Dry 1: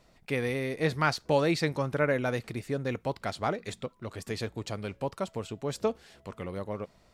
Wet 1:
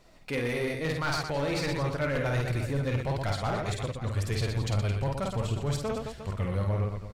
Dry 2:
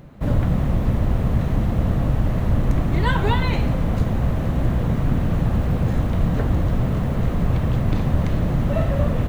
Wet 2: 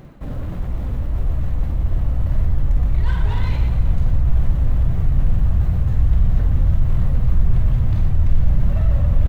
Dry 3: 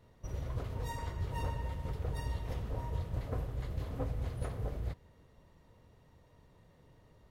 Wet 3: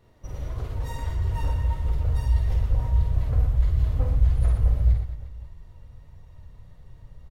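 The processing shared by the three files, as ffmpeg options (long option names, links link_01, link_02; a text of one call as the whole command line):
ffmpeg -i in.wav -filter_complex "[0:a]aecho=1:1:50|120|218|355.2|547.3:0.631|0.398|0.251|0.158|0.1,areverse,acompressor=threshold=-26dB:ratio=6,areverse,aeval=exprs='0.075*(abs(mod(val(0)/0.075+3,4)-2)-1)':channel_layout=same,flanger=delay=2.5:depth=1.6:regen=73:speed=1.6:shape=triangular,asplit=2[link_01][link_02];[link_02]asoftclip=type=hard:threshold=-36dB,volume=-4.5dB[link_03];[link_01][link_03]amix=inputs=2:normalize=0,asubboost=boost=8.5:cutoff=100,volume=3dB" out.wav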